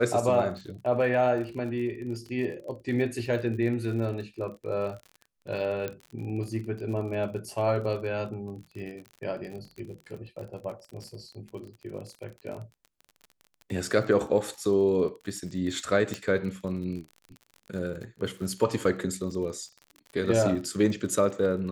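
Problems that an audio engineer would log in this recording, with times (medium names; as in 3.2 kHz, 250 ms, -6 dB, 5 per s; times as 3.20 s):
crackle 41 per s -37 dBFS
5.88 s: pop -19 dBFS
16.14 s: pop -17 dBFS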